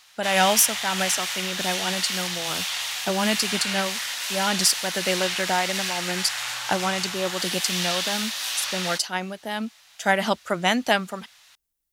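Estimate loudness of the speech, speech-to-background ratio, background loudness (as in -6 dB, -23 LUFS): -25.0 LUFS, 1.5 dB, -26.5 LUFS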